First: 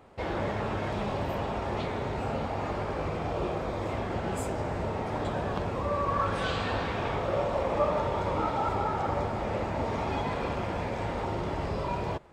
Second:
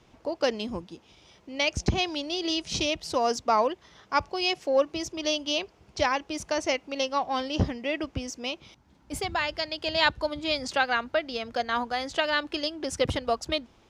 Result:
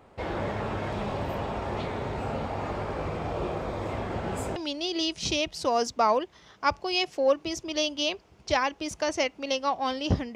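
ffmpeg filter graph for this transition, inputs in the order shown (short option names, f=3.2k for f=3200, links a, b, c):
-filter_complex "[0:a]apad=whole_dur=10.35,atrim=end=10.35,atrim=end=4.562[a];[1:a]atrim=start=2.048:end=7.84[b];[a][b]acrossfade=d=0.004:c1=hsin:c2=hsin"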